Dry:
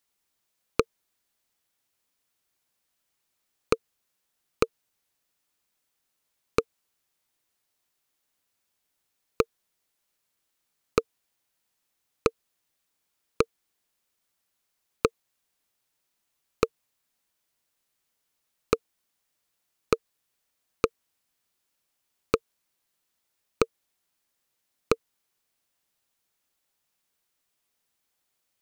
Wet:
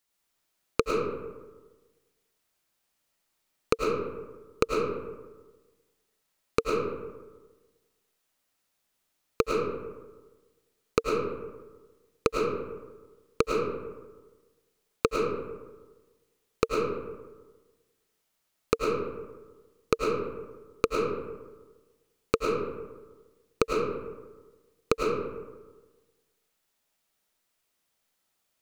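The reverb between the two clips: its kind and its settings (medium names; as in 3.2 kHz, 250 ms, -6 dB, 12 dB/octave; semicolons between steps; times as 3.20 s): algorithmic reverb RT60 1.3 s, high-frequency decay 0.45×, pre-delay 65 ms, DRR -2 dB; trim -1.5 dB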